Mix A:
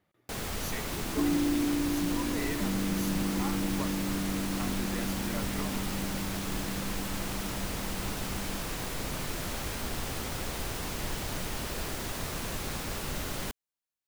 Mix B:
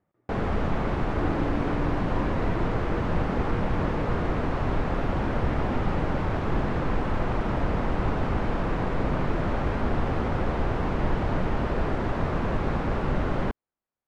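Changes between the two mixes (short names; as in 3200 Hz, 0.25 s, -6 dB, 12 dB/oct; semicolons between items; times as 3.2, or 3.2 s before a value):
first sound +11.0 dB; second sound: add resonant high-pass 500 Hz, resonance Q 3.6; master: add LPF 1300 Hz 12 dB/oct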